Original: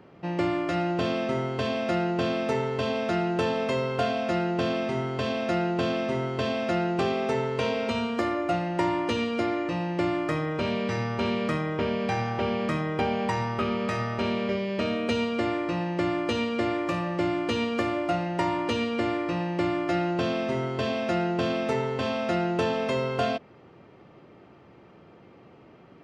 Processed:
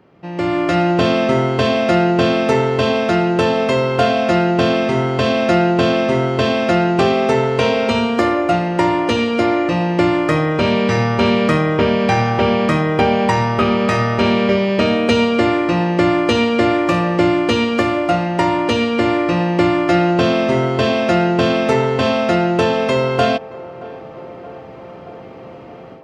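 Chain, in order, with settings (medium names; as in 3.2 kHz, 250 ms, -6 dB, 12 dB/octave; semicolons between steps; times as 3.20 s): level rider gain up to 14 dB; on a send: band-passed feedback delay 625 ms, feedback 82%, band-pass 680 Hz, level -18 dB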